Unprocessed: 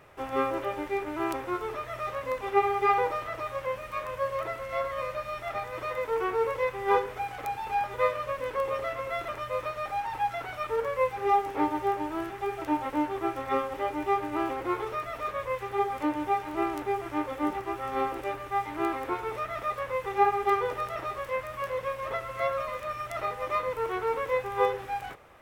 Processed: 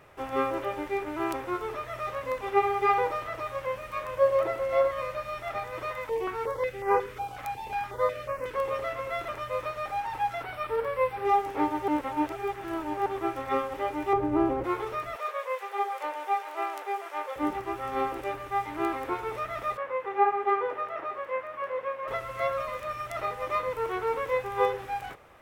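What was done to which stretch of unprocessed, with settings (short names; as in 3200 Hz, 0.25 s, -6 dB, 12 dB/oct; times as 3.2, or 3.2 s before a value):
4.17–4.91 small resonant body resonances 350/540/760 Hz, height 9 dB, ringing for 30 ms
5.91–8.54 stepped notch 5.5 Hz 400–3500 Hz
10.43–11.25 bell 6600 Hz -14 dB 0.33 oct
11.88–13.06 reverse
14.13–14.64 tilt shelf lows +9.5 dB
15.16–17.36 steep high-pass 450 Hz
19.77–22.08 three-band isolator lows -20 dB, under 230 Hz, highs -18 dB, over 2700 Hz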